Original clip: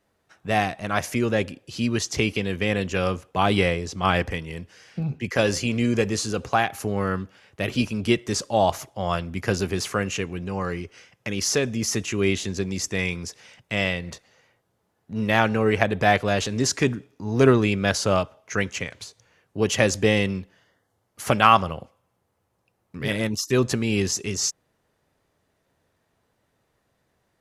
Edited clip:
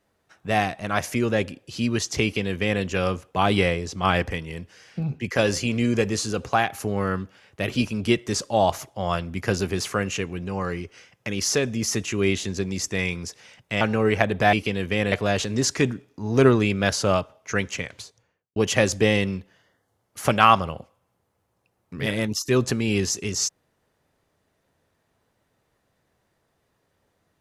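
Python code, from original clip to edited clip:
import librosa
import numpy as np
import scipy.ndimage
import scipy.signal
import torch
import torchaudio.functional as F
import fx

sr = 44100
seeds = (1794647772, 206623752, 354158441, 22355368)

y = fx.studio_fade_out(x, sr, start_s=18.98, length_s=0.6)
y = fx.edit(y, sr, fx.duplicate(start_s=2.23, length_s=0.59, to_s=16.14),
    fx.cut(start_s=13.81, length_s=1.61), tone=tone)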